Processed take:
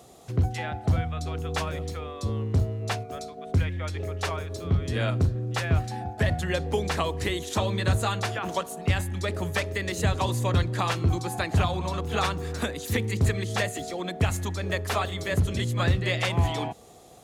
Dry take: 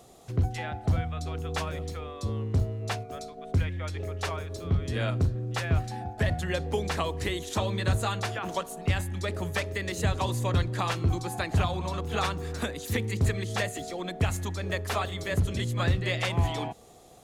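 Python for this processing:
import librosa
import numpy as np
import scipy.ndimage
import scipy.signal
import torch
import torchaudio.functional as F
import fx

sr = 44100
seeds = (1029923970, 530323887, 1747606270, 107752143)

y = scipy.signal.sosfilt(scipy.signal.butter(2, 47.0, 'highpass', fs=sr, output='sos'), x)
y = y * 10.0 ** (2.5 / 20.0)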